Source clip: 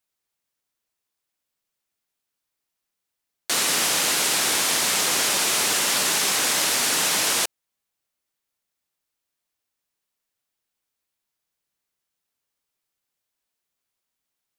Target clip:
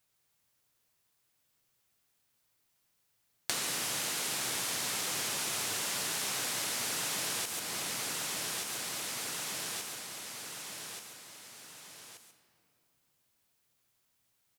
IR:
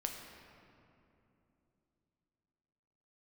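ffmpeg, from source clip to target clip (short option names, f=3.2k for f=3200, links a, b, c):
-filter_complex "[0:a]aecho=1:1:1179|2358|3537|4716:0.178|0.0818|0.0376|0.0173,asplit=2[a][b];[1:a]atrim=start_sample=2205,highshelf=f=7.1k:g=10,adelay=138[c];[b][c]afir=irnorm=-1:irlink=0,volume=-10dB[d];[a][d]amix=inputs=2:normalize=0,acompressor=threshold=-38dB:ratio=8,equalizer=f=120:t=o:w=0.78:g=10,volume=5dB"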